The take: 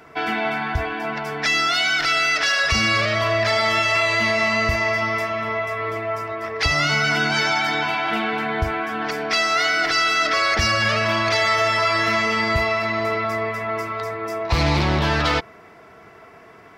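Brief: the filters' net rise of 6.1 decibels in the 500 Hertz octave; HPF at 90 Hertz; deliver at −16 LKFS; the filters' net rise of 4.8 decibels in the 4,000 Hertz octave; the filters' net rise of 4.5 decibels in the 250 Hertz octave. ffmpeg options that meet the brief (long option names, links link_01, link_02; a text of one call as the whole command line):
ffmpeg -i in.wav -af "highpass=90,equalizer=frequency=250:width_type=o:gain=3.5,equalizer=frequency=500:width_type=o:gain=8,equalizer=frequency=4000:width_type=o:gain=6,volume=1dB" out.wav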